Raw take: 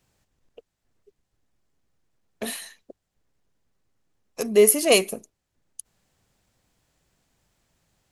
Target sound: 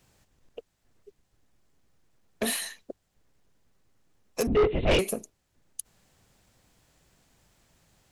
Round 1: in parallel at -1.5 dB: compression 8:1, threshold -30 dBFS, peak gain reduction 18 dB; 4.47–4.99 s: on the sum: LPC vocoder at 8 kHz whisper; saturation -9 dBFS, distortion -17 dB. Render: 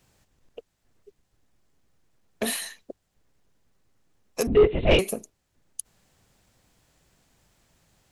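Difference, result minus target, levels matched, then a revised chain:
saturation: distortion -9 dB
in parallel at -1.5 dB: compression 8:1, threshold -30 dBFS, peak gain reduction 18 dB; 4.47–4.99 s: on the sum: LPC vocoder at 8 kHz whisper; saturation -17.5 dBFS, distortion -7 dB

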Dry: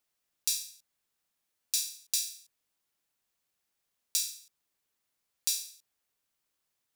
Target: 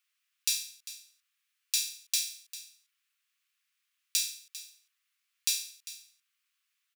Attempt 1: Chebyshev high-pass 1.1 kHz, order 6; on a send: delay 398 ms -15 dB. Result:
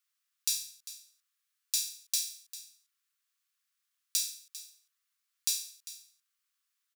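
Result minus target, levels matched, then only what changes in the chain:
2 kHz band -7.0 dB
add after Chebyshev high-pass: peaking EQ 2.5 kHz +9 dB 1.1 oct

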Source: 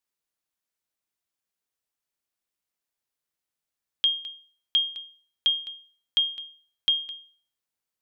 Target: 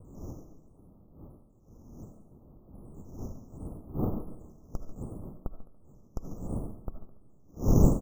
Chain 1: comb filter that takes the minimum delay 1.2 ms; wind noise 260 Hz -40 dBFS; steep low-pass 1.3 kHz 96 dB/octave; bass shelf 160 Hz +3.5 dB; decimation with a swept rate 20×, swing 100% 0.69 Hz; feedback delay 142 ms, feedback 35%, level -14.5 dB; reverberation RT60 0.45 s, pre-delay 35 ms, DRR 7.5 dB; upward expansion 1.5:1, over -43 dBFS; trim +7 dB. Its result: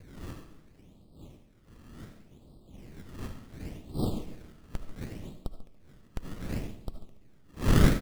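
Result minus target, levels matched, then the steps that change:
decimation with a swept rate: distortion +13 dB
change: decimation with a swept rate 5×, swing 100% 0.69 Hz

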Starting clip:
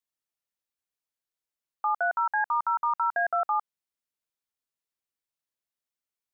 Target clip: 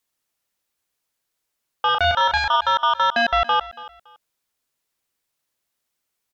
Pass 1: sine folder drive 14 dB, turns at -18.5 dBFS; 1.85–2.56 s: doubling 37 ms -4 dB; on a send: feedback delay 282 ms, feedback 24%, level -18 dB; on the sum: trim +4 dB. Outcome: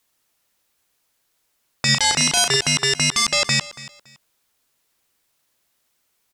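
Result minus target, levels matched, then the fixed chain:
sine folder: distortion +36 dB
sine folder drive 5 dB, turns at -18.5 dBFS; 1.85–2.56 s: doubling 37 ms -4 dB; on a send: feedback delay 282 ms, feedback 24%, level -18 dB; on the sum: trim +4 dB

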